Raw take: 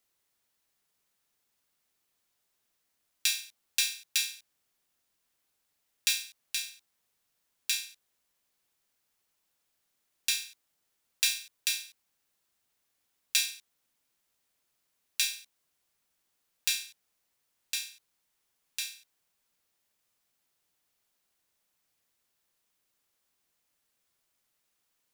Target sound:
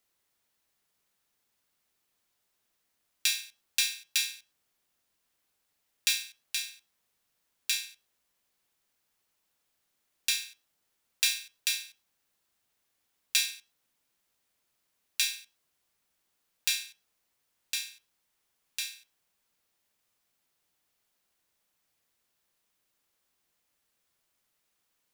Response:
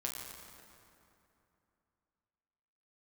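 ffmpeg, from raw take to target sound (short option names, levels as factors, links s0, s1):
-filter_complex "[0:a]asplit=2[s0][s1];[1:a]atrim=start_sample=2205,afade=t=out:st=0.17:d=0.01,atrim=end_sample=7938,lowpass=5300[s2];[s1][s2]afir=irnorm=-1:irlink=0,volume=0.224[s3];[s0][s3]amix=inputs=2:normalize=0"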